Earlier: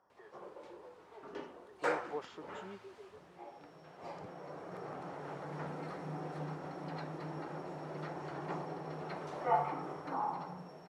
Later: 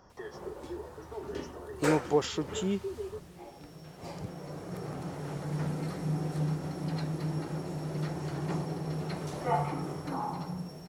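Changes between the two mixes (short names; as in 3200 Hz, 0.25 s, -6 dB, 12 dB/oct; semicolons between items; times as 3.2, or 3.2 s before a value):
speech +11.0 dB; master: remove band-pass 990 Hz, Q 0.71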